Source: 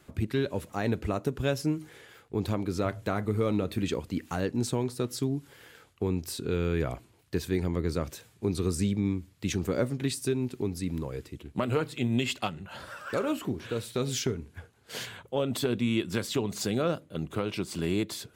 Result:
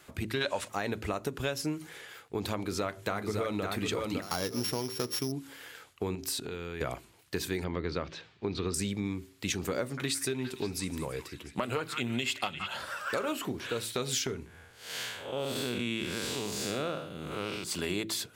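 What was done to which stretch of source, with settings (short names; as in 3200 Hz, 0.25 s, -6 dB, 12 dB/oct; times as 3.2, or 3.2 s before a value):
0.41–0.68 spectral gain 500–9900 Hz +12 dB
2.54–3.64 echo throw 0.56 s, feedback 25%, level -5 dB
4.22–5.32 sample sorter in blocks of 8 samples
6.15–6.81 compressor 4:1, threshold -34 dBFS
7.64–8.74 LPF 4400 Hz 24 dB/oct
9.8–12.74 delay with a stepping band-pass 0.174 s, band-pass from 1500 Hz, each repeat 0.7 oct, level -7 dB
14.46–17.64 time blur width 0.195 s
whole clip: low shelf 460 Hz -11 dB; de-hum 55.07 Hz, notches 7; compressor, threshold -34 dBFS; gain +6 dB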